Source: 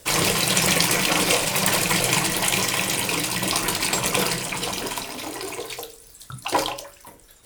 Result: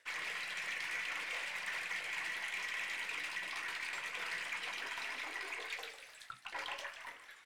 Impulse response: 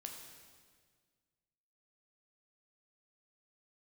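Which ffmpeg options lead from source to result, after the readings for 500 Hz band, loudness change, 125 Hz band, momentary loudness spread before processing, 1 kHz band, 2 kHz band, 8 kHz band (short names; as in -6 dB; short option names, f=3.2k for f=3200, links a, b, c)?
-27.0 dB, -18.5 dB, under -35 dB, 13 LU, -20.0 dB, -12.0 dB, -29.0 dB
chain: -filter_complex "[0:a]areverse,acompressor=threshold=-34dB:ratio=12,areverse,bandpass=f=1.9k:t=q:w=3:csg=0,asplit=7[a][b][c][d][e][f][g];[b]adelay=150,afreqshift=83,volume=-12.5dB[h];[c]adelay=300,afreqshift=166,volume=-17.7dB[i];[d]adelay=450,afreqshift=249,volume=-22.9dB[j];[e]adelay=600,afreqshift=332,volume=-28.1dB[k];[f]adelay=750,afreqshift=415,volume=-33.3dB[l];[g]adelay=900,afreqshift=498,volume=-38.5dB[m];[a][h][i][j][k][l][m]amix=inputs=7:normalize=0,asoftclip=type=tanh:threshold=-40dB,aeval=exprs='0.01*(cos(1*acos(clip(val(0)/0.01,-1,1)))-cos(1*PI/2))+0.0002*(cos(8*acos(clip(val(0)/0.01,-1,1)))-cos(8*PI/2))':c=same,volume=7.5dB"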